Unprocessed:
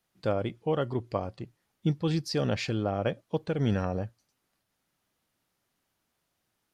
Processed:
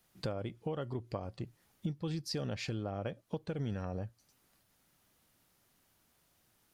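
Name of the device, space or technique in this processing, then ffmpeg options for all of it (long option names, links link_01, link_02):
ASMR close-microphone chain: -af "lowshelf=frequency=140:gain=5,acompressor=threshold=-41dB:ratio=5,highshelf=frequency=8100:gain=6.5,volume=4.5dB"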